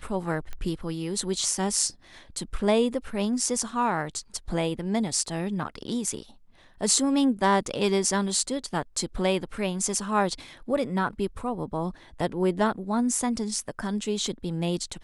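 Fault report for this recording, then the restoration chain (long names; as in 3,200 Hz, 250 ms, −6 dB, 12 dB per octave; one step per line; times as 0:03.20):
0:00.53: click −22 dBFS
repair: click removal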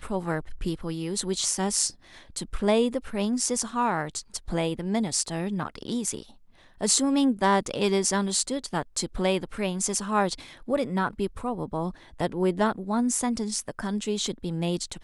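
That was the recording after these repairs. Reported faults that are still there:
none of them is left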